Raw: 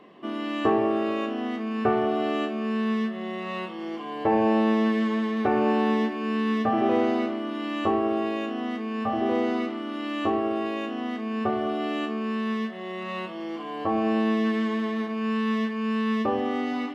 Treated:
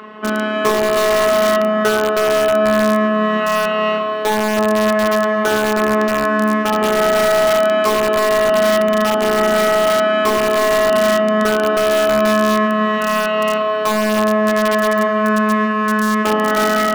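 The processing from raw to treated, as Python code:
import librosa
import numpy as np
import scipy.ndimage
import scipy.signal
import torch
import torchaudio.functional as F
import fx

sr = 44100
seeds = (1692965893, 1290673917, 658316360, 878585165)

p1 = fx.robotise(x, sr, hz=214.0)
p2 = fx.high_shelf(p1, sr, hz=3300.0, db=-5.0)
p3 = p2 + fx.echo_feedback(p2, sr, ms=316, feedback_pct=42, wet_db=-3.5, dry=0)
p4 = fx.rider(p3, sr, range_db=5, speed_s=0.5)
p5 = scipy.signal.sosfilt(scipy.signal.butter(2, 75.0, 'highpass', fs=sr, output='sos'), p4)
p6 = fx.peak_eq(p5, sr, hz=1400.0, db=13.5, octaves=0.77)
p7 = fx.rev_spring(p6, sr, rt60_s=3.7, pass_ms=(45, 60), chirp_ms=80, drr_db=6.0)
p8 = (np.mod(10.0 ** (18.0 / 20.0) * p7 + 1.0, 2.0) - 1.0) / 10.0 ** (18.0 / 20.0)
p9 = p7 + (p8 * 10.0 ** (-4.0 / 20.0))
y = p9 * 10.0 ** (6.0 / 20.0)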